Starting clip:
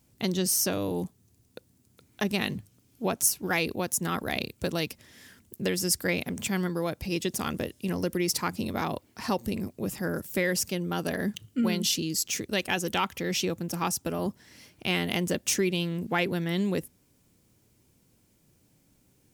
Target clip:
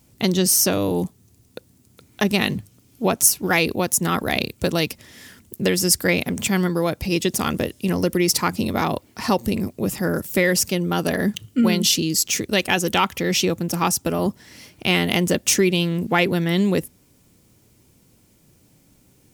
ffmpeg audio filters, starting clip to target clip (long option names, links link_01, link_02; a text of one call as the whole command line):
ffmpeg -i in.wav -af "bandreject=frequency=1600:width=26,volume=8.5dB" out.wav